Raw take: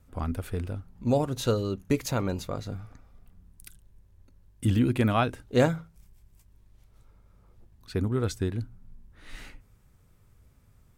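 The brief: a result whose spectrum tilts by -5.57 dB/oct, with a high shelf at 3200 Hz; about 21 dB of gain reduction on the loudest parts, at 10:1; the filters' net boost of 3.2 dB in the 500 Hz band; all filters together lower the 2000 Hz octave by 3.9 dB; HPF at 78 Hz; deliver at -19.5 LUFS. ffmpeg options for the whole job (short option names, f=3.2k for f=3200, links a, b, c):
-af "highpass=78,equalizer=f=500:t=o:g=4,equalizer=f=2k:t=o:g=-7,highshelf=f=3.2k:g=3.5,acompressor=threshold=-36dB:ratio=10,volume=23dB"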